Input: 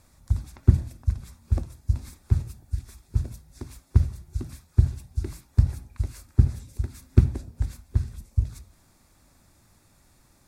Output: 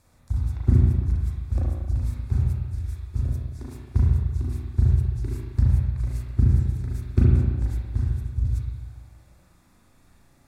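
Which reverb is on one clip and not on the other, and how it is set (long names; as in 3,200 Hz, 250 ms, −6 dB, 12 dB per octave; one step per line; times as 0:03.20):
spring reverb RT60 1.5 s, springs 33/37 ms, chirp 30 ms, DRR −5.5 dB
level −4.5 dB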